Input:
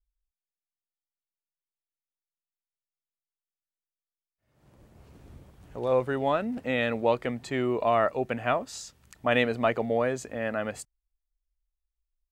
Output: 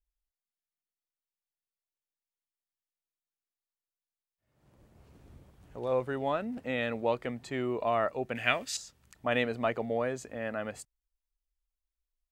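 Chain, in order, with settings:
0:08.35–0:08.77: high shelf with overshoot 1,500 Hz +11 dB, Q 1.5
level −5 dB

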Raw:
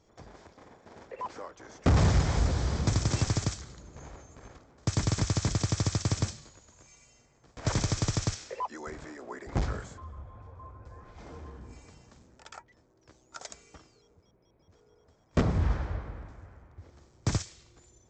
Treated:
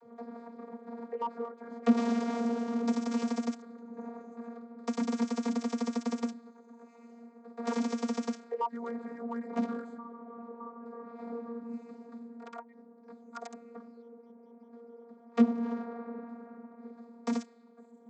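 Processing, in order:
adaptive Wiener filter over 15 samples
channel vocoder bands 32, saw 234 Hz
multiband upward and downward compressor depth 40%
level +2.5 dB

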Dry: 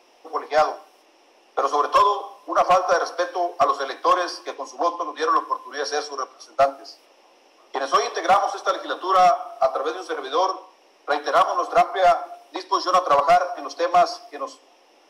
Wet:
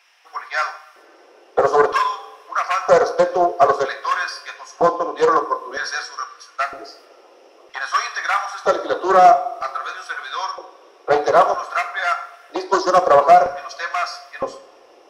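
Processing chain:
dynamic equaliser 3,100 Hz, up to −6 dB, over −46 dBFS, Q 4.1
auto-filter high-pass square 0.52 Hz 430–1,600 Hz
low-shelf EQ 280 Hz +10 dB
coupled-rooms reverb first 0.48 s, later 3 s, from −22 dB, DRR 7.5 dB
highs frequency-modulated by the lows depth 0.17 ms

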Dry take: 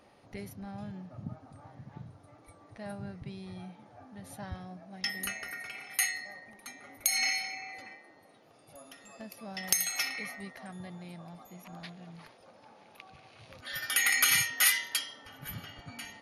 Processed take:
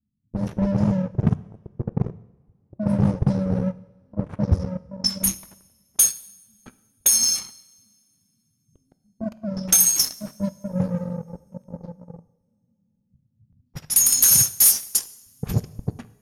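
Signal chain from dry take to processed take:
Chebyshev band-stop filter 220–5,700 Hz, order 4
leveller curve on the samples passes 5
in parallel at −1 dB: downward compressor, threshold −26 dBFS, peak gain reduction 13.5 dB
on the sum: low-pass that shuts in the quiet parts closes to 590 Hz, open at −14.5 dBFS
automatic gain control gain up to 9 dB
coupled-rooms reverb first 0.83 s, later 3.2 s, from −21 dB, DRR 15 dB
level −5 dB

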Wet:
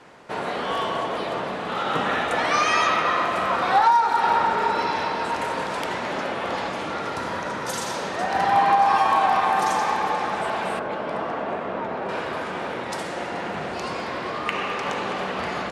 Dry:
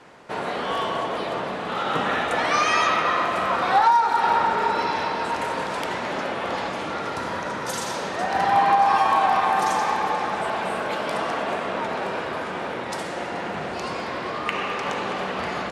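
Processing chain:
0:10.79–0:12.09: low-pass filter 1,200 Hz 6 dB per octave

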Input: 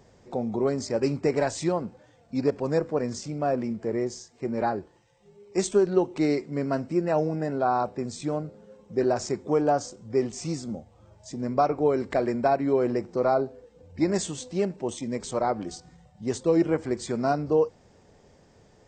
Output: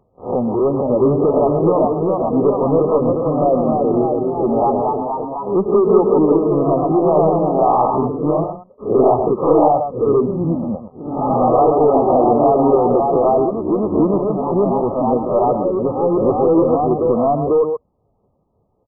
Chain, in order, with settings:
peak hold with a rise ahead of every peak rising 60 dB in 0.43 s
reverb reduction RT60 0.84 s
single-tap delay 129 ms −10.5 dB
leveller curve on the samples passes 3
delay with pitch and tempo change per echo 491 ms, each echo +1 semitone, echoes 3
linear-phase brick-wall low-pass 1,300 Hz

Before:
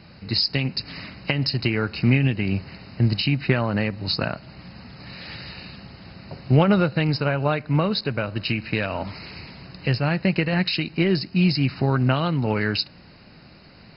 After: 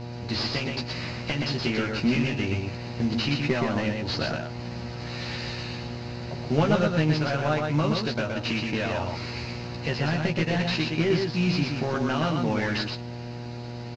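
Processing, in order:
variable-slope delta modulation 32 kbit/s
parametric band 130 Hz −12 dB 0.26 octaves
in parallel at +0.5 dB: downward compressor, threshold −36 dBFS, peak gain reduction 19.5 dB
on the sum: double-tracking delay 13 ms −3.5 dB
single-tap delay 122 ms −4 dB
hum with harmonics 120 Hz, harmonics 8, −31 dBFS −6 dB per octave
level −5.5 dB

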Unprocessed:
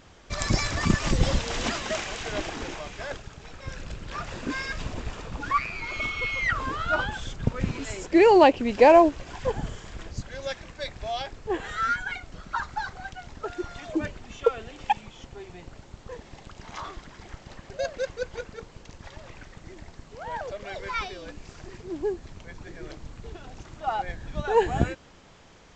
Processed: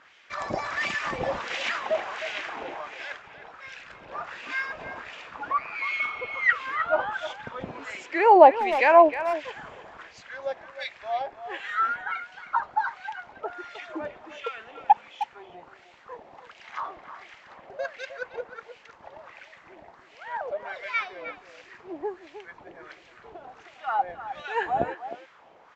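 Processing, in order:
LFO wah 1.4 Hz 670–2,500 Hz, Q 2.1
far-end echo of a speakerphone 310 ms, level −11 dB
level +6.5 dB

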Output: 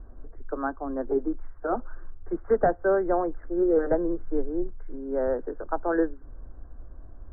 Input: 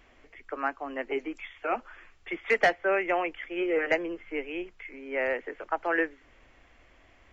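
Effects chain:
Chebyshev low-pass filter 1,600 Hz, order 6
spectral tilt −4.5 dB per octave

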